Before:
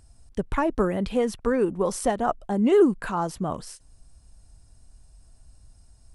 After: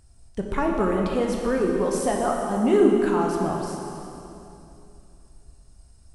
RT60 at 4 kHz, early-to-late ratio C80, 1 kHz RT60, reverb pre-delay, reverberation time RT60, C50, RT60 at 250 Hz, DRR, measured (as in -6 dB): 2.7 s, 2.5 dB, 2.7 s, 12 ms, 2.9 s, 1.5 dB, 3.1 s, -0.5 dB